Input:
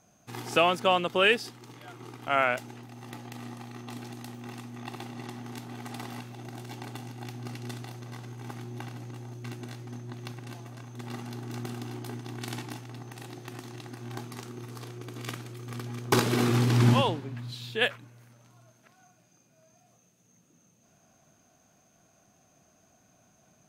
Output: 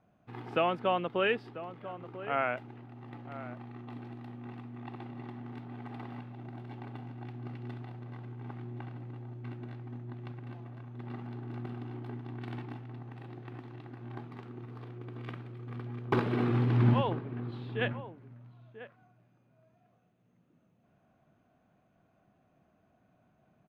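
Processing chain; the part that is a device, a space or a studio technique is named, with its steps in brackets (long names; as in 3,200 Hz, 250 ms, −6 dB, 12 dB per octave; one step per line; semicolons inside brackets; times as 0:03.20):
shout across a valley (high-frequency loss of the air 480 metres; slap from a distant wall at 170 metres, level −13 dB)
level −3 dB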